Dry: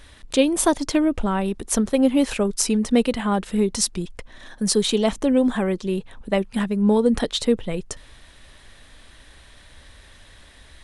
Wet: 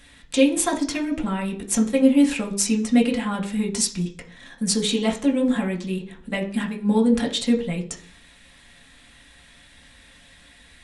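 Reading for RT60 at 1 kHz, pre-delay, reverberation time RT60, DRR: 0.40 s, 3 ms, 0.45 s, -1.0 dB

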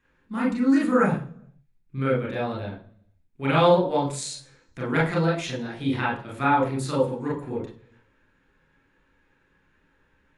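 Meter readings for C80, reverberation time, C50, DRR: 12.5 dB, 0.50 s, 6.5 dB, -4.5 dB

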